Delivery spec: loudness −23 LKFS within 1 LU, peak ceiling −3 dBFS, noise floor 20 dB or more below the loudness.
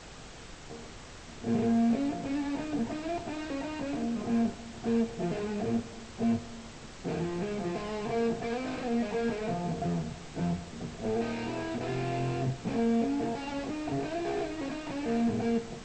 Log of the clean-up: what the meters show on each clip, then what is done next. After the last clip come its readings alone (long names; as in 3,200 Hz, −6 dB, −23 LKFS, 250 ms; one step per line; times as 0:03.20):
background noise floor −47 dBFS; target noise floor −53 dBFS; integrated loudness −32.5 LKFS; sample peak −18.0 dBFS; target loudness −23.0 LKFS
→ noise reduction from a noise print 6 dB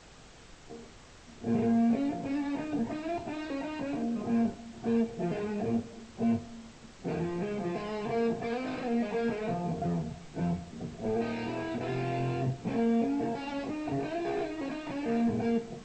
background noise floor −53 dBFS; integrated loudness −32.5 LKFS; sample peak −18.5 dBFS; target loudness −23.0 LKFS
→ level +9.5 dB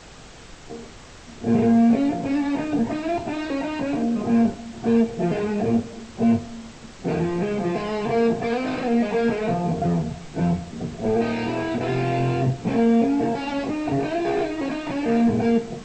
integrated loudness −23.0 LKFS; sample peak −9.0 dBFS; background noise floor −43 dBFS